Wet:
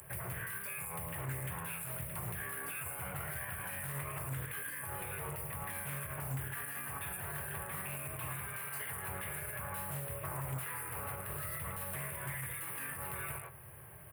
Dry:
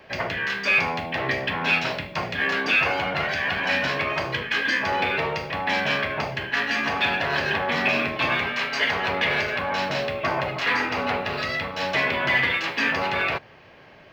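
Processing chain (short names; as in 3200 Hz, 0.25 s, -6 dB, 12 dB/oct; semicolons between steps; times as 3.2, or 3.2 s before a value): HPF 48 Hz 24 dB/oct; speakerphone echo 0.11 s, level -8 dB; compressor, threshold -30 dBFS, peak gain reduction 13.5 dB; EQ curve 140 Hz 0 dB, 240 Hz -25 dB, 360 Hz -15 dB, 670 Hz -18 dB, 1200 Hz -12 dB, 4300 Hz -24 dB, 6500 Hz -23 dB, 9700 Hz +12 dB; soft clip -31 dBFS, distortion -31 dB; resonant high shelf 6900 Hz +12.5 dB, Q 1.5; doubler 22 ms -12.5 dB; limiter -35 dBFS, peak gain reduction 9 dB; notches 50/100/150 Hz; Doppler distortion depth 0.36 ms; gain +6 dB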